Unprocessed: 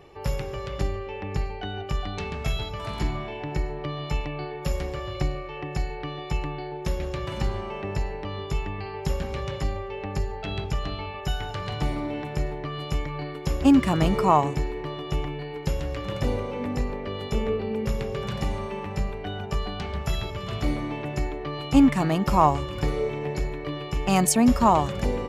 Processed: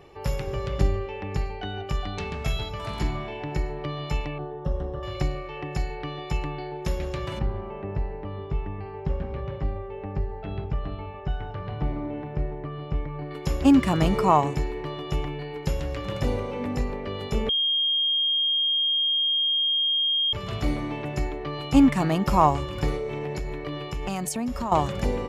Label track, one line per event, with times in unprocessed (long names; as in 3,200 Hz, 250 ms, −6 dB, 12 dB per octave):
0.470000	1.060000	low-shelf EQ 440 Hz +5.5 dB
4.380000	5.030000	moving average over 19 samples
7.390000	13.310000	head-to-tape spacing loss at 10 kHz 42 dB
17.490000	20.330000	beep over 3,230 Hz −20.5 dBFS
22.960000	24.720000	downward compressor, threshold −26 dBFS